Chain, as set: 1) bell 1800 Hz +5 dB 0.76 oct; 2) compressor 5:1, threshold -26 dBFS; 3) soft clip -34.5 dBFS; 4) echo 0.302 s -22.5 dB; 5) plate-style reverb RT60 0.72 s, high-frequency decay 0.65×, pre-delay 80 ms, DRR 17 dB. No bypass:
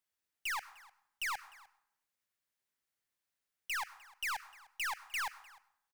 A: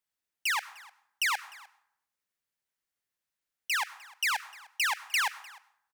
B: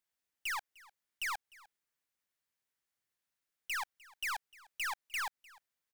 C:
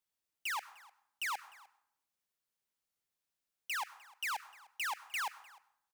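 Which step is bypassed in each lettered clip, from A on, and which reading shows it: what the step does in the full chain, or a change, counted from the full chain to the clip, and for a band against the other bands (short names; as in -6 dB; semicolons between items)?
3, distortion -10 dB; 5, echo-to-direct -16.0 dB to -22.5 dB; 1, 500 Hz band +2.0 dB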